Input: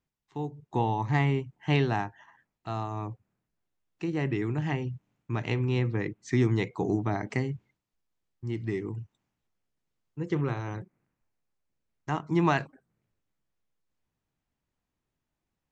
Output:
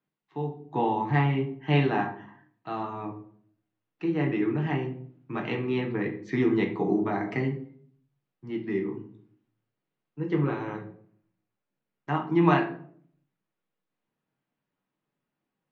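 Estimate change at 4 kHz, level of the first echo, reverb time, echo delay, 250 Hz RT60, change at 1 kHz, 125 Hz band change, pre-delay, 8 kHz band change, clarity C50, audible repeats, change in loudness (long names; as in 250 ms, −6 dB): 0.0 dB, no echo audible, 0.55 s, no echo audible, 0.75 s, +3.0 dB, −1.0 dB, 6 ms, can't be measured, 9.0 dB, no echo audible, +2.0 dB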